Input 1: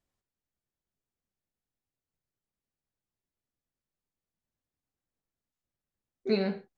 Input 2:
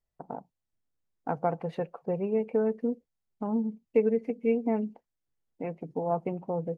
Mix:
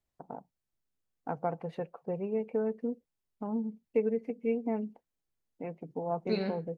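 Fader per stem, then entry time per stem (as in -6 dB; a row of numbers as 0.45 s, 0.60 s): -4.0 dB, -4.5 dB; 0.00 s, 0.00 s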